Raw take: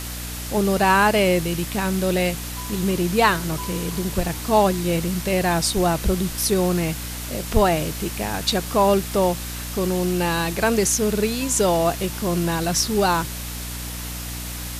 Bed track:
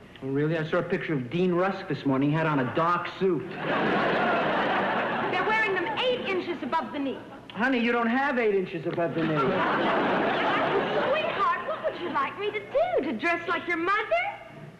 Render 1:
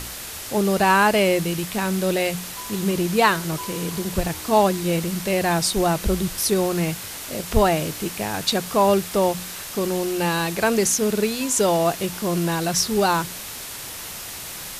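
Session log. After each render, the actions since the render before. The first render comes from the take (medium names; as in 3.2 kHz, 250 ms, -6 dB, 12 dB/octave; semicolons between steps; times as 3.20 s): de-hum 60 Hz, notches 5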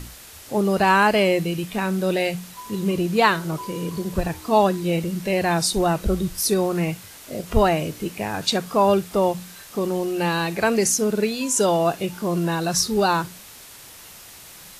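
noise print and reduce 9 dB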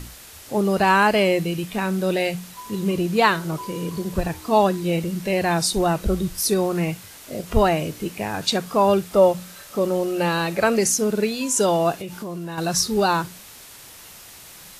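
9.13–10.79 s: small resonant body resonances 570/1300 Hz, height 9 dB; 12.00–12.58 s: compression, threshold -28 dBFS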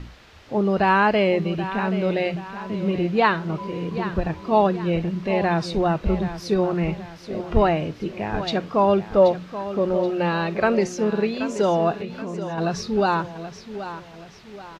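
distance through air 230 m; feedback delay 779 ms, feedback 41%, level -12 dB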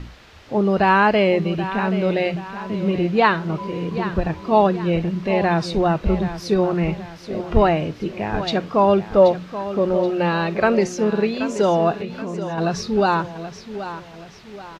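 trim +2.5 dB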